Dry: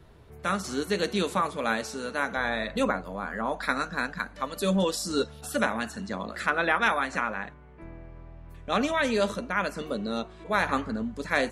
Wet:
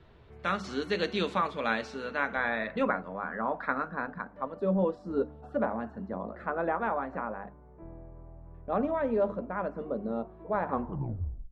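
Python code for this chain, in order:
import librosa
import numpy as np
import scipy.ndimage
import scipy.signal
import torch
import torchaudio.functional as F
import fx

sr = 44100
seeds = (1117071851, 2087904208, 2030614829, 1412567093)

y = fx.tape_stop_end(x, sr, length_s=0.81)
y = fx.filter_sweep_lowpass(y, sr, from_hz=3500.0, to_hz=810.0, start_s=1.64, end_s=4.65, q=1.1)
y = fx.hum_notches(y, sr, base_hz=50, count=6)
y = y * librosa.db_to_amplitude(-2.5)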